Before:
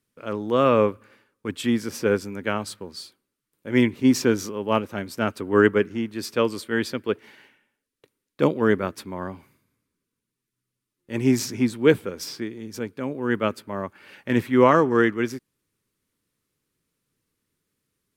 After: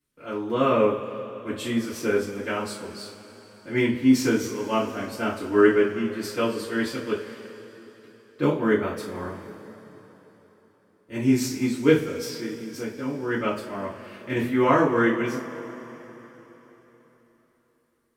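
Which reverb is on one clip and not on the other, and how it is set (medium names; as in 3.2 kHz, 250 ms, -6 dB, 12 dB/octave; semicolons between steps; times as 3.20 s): two-slope reverb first 0.32 s, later 4 s, from -20 dB, DRR -9 dB; trim -10.5 dB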